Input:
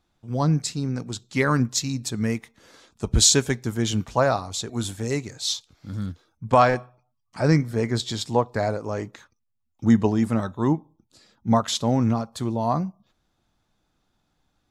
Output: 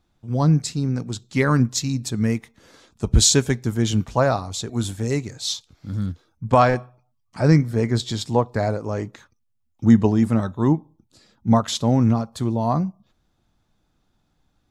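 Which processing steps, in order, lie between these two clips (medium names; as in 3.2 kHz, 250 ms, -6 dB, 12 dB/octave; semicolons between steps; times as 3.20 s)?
bass shelf 310 Hz +5.5 dB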